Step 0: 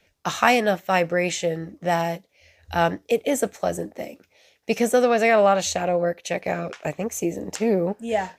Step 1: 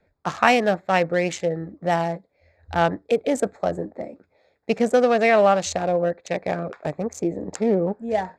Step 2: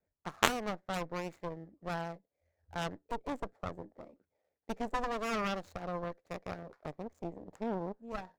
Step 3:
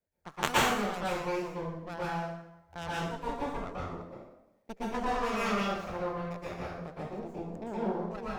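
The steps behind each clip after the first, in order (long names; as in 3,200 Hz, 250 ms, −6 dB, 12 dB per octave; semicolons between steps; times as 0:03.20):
adaptive Wiener filter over 15 samples; low-pass filter 8,700 Hz 12 dB per octave; level +1 dB
running median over 15 samples; harmonic generator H 2 −15 dB, 3 −7 dB, 4 −14 dB, 5 −31 dB, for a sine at −3 dBFS; level −5 dB
dense smooth reverb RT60 0.87 s, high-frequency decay 0.8×, pre-delay 105 ms, DRR −8.5 dB; level −4.5 dB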